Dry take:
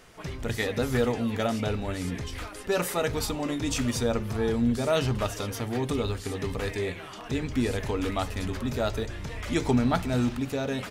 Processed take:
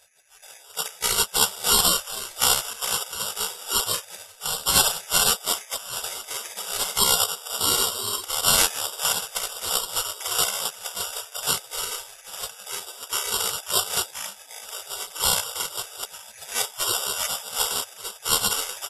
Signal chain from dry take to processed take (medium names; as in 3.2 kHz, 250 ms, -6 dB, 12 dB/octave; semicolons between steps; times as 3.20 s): cascade formant filter e; dynamic bell 150 Hz, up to +3 dB, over -51 dBFS, Q 0.75; echo from a far wall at 200 m, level -7 dB; spectral gate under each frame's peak -30 dB weak; careless resampling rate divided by 6×, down none, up zero stuff; speed mistake 78 rpm record played at 45 rpm; loudness maximiser +32.5 dB; upward expansion 1.5:1, over -33 dBFS